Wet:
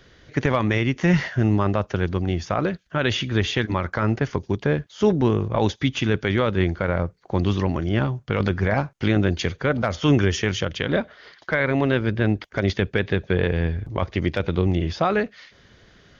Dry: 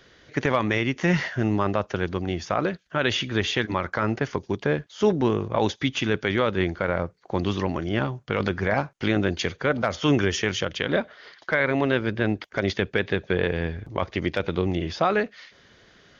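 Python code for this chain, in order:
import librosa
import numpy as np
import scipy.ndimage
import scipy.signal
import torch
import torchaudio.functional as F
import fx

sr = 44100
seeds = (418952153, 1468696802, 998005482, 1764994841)

y = fx.low_shelf(x, sr, hz=150.0, db=10.5)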